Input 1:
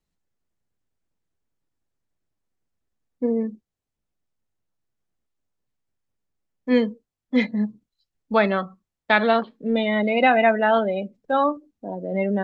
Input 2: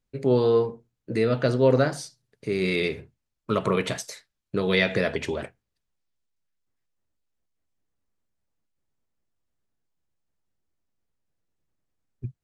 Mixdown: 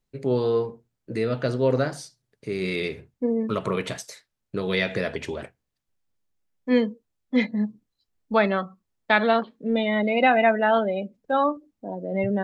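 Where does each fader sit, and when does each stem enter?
−1.5, −2.5 decibels; 0.00, 0.00 seconds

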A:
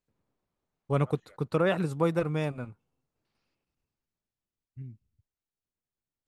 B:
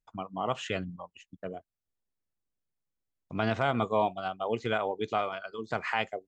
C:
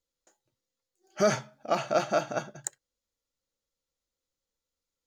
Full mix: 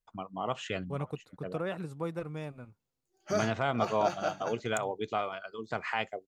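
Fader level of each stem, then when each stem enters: −9.5, −2.5, −7.0 decibels; 0.00, 0.00, 2.10 seconds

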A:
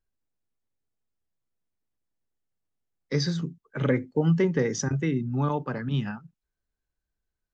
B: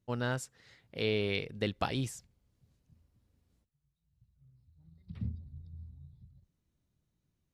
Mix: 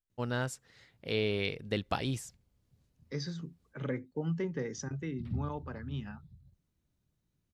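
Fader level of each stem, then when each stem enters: −11.5, 0.0 decibels; 0.00, 0.10 seconds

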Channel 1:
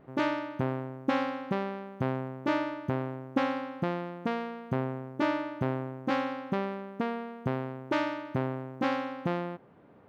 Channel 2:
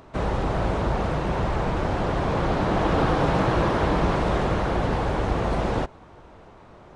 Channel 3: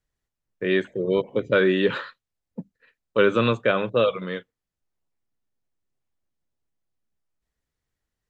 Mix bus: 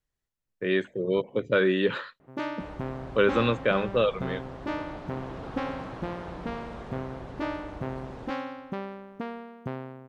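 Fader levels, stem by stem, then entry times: −4.0, −18.5, −3.5 decibels; 2.20, 2.45, 0.00 seconds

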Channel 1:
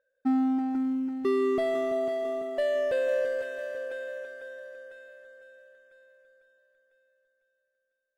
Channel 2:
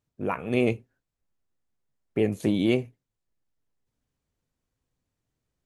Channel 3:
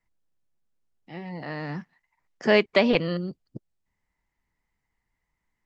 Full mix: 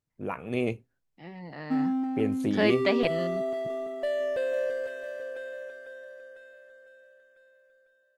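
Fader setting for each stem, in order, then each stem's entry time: −2.0, −5.0, −6.0 decibels; 1.45, 0.00, 0.10 seconds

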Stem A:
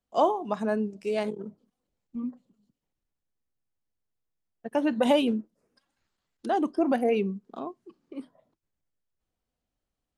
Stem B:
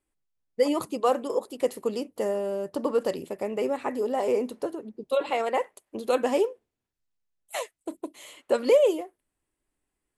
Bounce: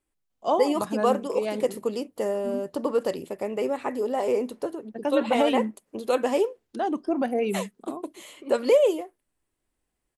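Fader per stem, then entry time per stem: −1.0, +0.5 decibels; 0.30, 0.00 seconds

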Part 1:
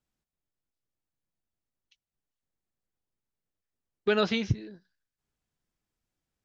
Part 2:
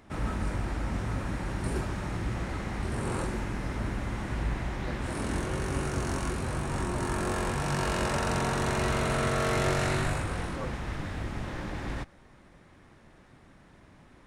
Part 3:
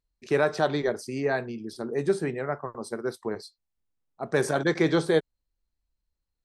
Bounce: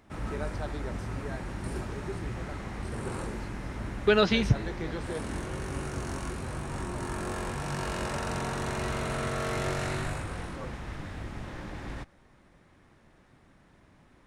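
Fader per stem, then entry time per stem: +3.0, −4.0, −15.0 decibels; 0.00, 0.00, 0.00 seconds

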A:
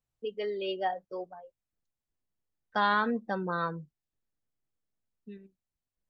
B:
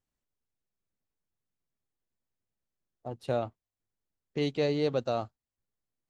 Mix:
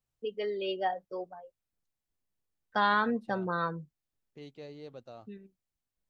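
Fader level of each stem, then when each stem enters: 0.0, −18.0 decibels; 0.00, 0.00 seconds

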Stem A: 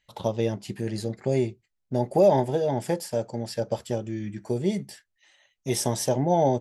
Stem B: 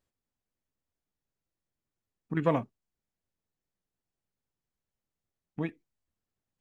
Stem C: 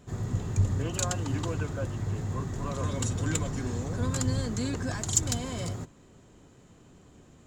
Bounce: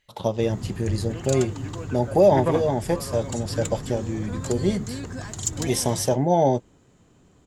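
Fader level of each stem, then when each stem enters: +2.5, +1.5, −2.0 decibels; 0.00, 0.00, 0.30 seconds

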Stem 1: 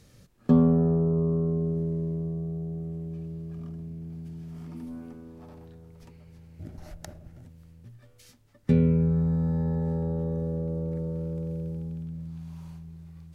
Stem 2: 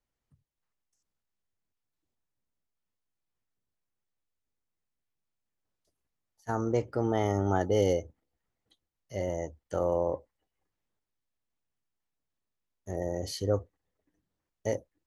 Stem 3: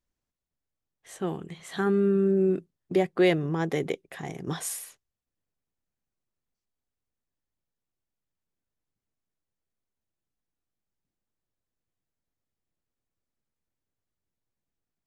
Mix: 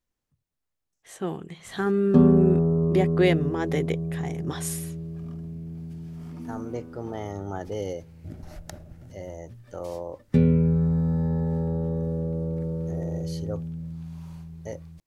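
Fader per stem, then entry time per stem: +2.0, −6.0, +0.5 decibels; 1.65, 0.00, 0.00 seconds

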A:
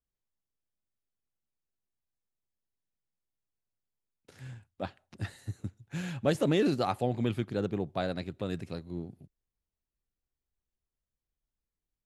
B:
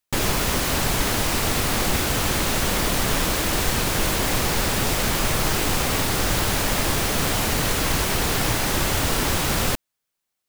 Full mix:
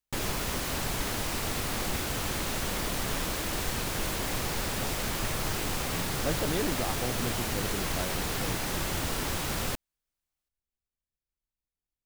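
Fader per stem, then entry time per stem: −5.5, −9.5 decibels; 0.00, 0.00 seconds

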